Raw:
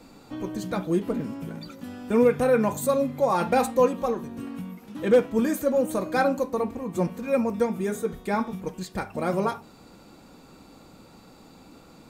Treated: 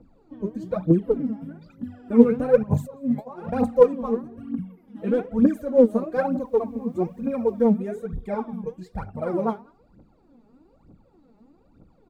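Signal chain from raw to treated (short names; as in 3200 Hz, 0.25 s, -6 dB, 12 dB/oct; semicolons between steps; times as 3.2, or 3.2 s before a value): spectral noise reduction 9 dB; 2.63–3.5 negative-ratio compressor -35 dBFS, ratio -1; tilt shelf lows +8 dB; outdoor echo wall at 33 m, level -25 dB; phaser 1.1 Hz, delay 5 ms, feedback 78%; 6.14–7.74 requantised 10-bit, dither triangular; high shelf 3400 Hz -10 dB; gain -6.5 dB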